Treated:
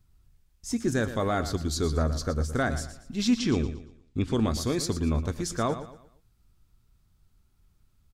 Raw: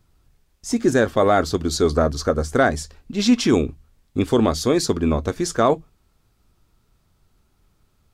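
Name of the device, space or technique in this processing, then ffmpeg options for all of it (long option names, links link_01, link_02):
smiley-face EQ: -filter_complex "[0:a]asettb=1/sr,asplit=3[link_01][link_02][link_03];[link_01]atrim=end=3.374[link_04];[link_02]atrim=start=3.37:end=4.34,asetpts=PTS-STARTPTS,afade=type=in:duration=0.004:curve=qsin,afade=type=out:start_time=0.966:duration=0.004:curve=qsin,lowpass=6200[link_05];[link_03]atrim=start=4.336[link_06];[link_04][link_05]acrossfade=duration=0.004:curve1=hsin:curve2=qsin[link_07];[link_07][link_06]acrossfade=duration=0.004:curve1=qsin:curve2=hsin,lowshelf=frequency=190:gain=7.5,equalizer=frequency=520:width_type=o:width=1.9:gain=-5.5,highshelf=frequency=7500:gain=4,aecho=1:1:116|232|348|464:0.251|0.0879|0.0308|0.0108,volume=-8dB"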